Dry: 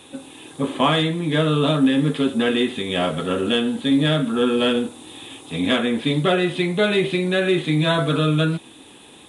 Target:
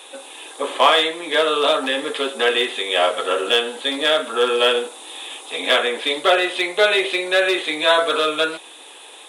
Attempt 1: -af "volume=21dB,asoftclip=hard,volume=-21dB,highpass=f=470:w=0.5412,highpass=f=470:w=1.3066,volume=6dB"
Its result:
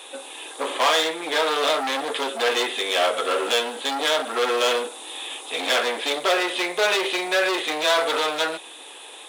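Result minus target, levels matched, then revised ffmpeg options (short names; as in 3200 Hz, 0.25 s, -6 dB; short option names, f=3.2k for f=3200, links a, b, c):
overloaded stage: distortion +19 dB
-af "volume=11dB,asoftclip=hard,volume=-11dB,highpass=f=470:w=0.5412,highpass=f=470:w=1.3066,volume=6dB"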